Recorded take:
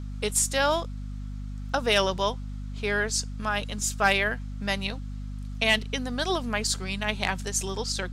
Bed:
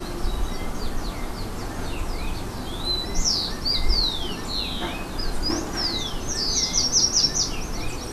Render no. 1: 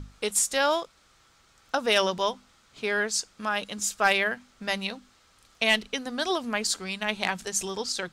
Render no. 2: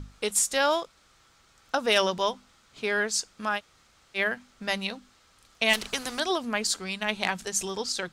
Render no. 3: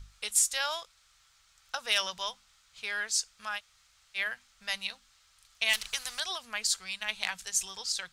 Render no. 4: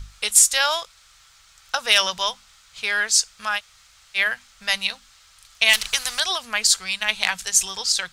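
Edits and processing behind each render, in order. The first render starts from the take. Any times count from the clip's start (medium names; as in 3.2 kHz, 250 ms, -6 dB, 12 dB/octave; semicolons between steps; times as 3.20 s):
hum notches 50/100/150/200/250 Hz
3.58–4.17 s: room tone, crossfade 0.06 s; 5.73–6.20 s: spectrum-flattening compressor 2:1
amplifier tone stack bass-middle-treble 10-0-10
trim +11.5 dB; peak limiter -1 dBFS, peak gain reduction 1 dB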